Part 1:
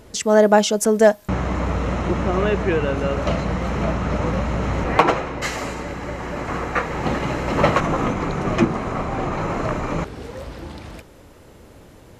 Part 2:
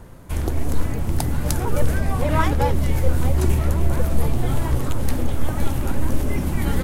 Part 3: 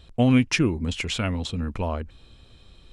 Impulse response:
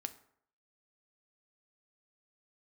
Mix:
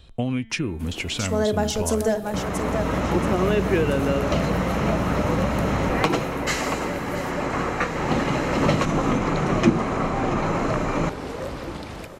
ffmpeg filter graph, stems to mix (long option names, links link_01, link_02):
-filter_complex "[0:a]equalizer=frequency=63:width=0.87:gain=-6,adelay=1050,volume=-1.5dB,asplit=3[link_01][link_02][link_03];[link_02]volume=-3dB[link_04];[link_03]volume=-12dB[link_05];[1:a]highpass=180,adelay=500,volume=-11dB,asplit=2[link_06][link_07];[link_07]volume=-19.5dB[link_08];[2:a]bandreject=frequency=224.1:width_type=h:width=4,bandreject=frequency=448.2:width_type=h:width=4,bandreject=frequency=672.3:width_type=h:width=4,bandreject=frequency=896.4:width_type=h:width=4,bandreject=frequency=1120.5:width_type=h:width=4,bandreject=frequency=1344.6:width_type=h:width=4,bandreject=frequency=1568.7:width_type=h:width=4,bandreject=frequency=1792.8:width_type=h:width=4,bandreject=frequency=2016.9:width_type=h:width=4,bandreject=frequency=2241:width_type=h:width=4,bandreject=frequency=2465.1:width_type=h:width=4,bandreject=frequency=2689.2:width_type=h:width=4,bandreject=frequency=2913.3:width_type=h:width=4,bandreject=frequency=3137.4:width_type=h:width=4,bandreject=frequency=3361.5:width_type=h:width=4,bandreject=frequency=3585.6:width_type=h:width=4,bandreject=frequency=3809.7:width_type=h:width=4,bandreject=frequency=4033.8:width_type=h:width=4,acompressor=threshold=-24dB:ratio=4,volume=1dB,asplit=2[link_09][link_10];[link_10]apad=whole_len=584183[link_11];[link_01][link_11]sidechaincompress=threshold=-44dB:ratio=8:attack=16:release=685[link_12];[3:a]atrim=start_sample=2205[link_13];[link_04][link_13]afir=irnorm=-1:irlink=0[link_14];[link_05][link_08]amix=inputs=2:normalize=0,aecho=0:1:680|1360|2040|2720|3400:1|0.37|0.137|0.0507|0.0187[link_15];[link_12][link_06][link_09][link_14][link_15]amix=inputs=5:normalize=0,acrossover=split=360|3000[link_16][link_17][link_18];[link_17]acompressor=threshold=-23dB:ratio=6[link_19];[link_16][link_19][link_18]amix=inputs=3:normalize=0"